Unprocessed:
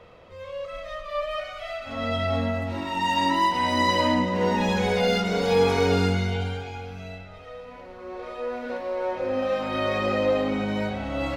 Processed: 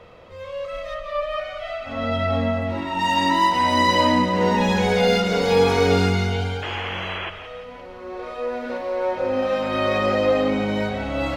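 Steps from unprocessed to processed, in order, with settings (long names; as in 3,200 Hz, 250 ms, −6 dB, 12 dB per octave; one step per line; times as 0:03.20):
0:00.94–0:02.99: high-shelf EQ 4,300 Hz −9 dB
0:06.62–0:07.30: sound drawn into the spectrogram noise 320–3,400 Hz −34 dBFS
feedback echo with a high-pass in the loop 172 ms, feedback 46%, level −10 dB
level +3.5 dB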